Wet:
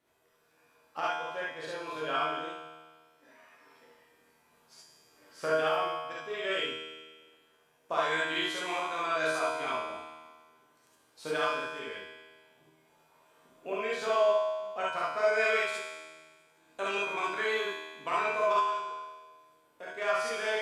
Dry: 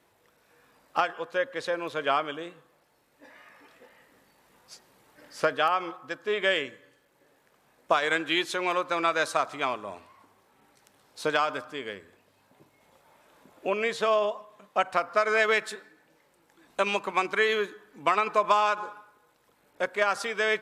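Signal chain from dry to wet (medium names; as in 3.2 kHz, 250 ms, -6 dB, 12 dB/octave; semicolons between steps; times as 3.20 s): 18.53–19.97 s: compression 2.5:1, threshold -34 dBFS, peak gain reduction 10 dB; feedback comb 79 Hz, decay 1.5 s, harmonics all, mix 90%; gated-style reverb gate 90 ms rising, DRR -5 dB; trim +3.5 dB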